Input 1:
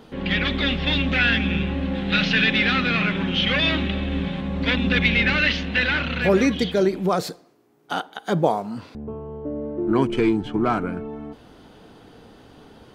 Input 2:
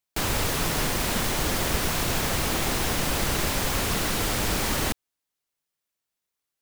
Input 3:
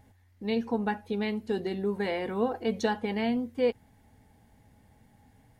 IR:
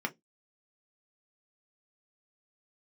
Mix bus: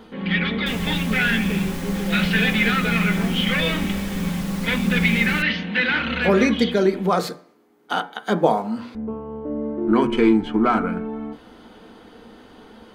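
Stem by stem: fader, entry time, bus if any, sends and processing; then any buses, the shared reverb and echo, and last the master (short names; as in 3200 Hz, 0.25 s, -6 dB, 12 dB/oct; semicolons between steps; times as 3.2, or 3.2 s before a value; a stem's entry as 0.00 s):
-2.0 dB, 0.00 s, send -4.5 dB, auto duck -13 dB, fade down 0.30 s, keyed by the third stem
-10.5 dB, 0.50 s, no send, dry
-4.0 dB, 0.00 s, no send, steep low-pass 810 Hz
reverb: on, RT60 0.15 s, pre-delay 3 ms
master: low shelf 68 Hz +8 dB; de-hum 119.9 Hz, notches 20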